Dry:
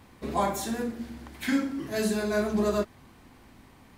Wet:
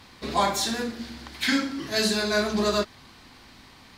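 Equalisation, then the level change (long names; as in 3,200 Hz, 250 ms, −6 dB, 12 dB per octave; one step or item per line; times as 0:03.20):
parametric band 1,400 Hz +4.5 dB 1.8 octaves
parametric band 4,400 Hz +14.5 dB 1.3 octaves
0.0 dB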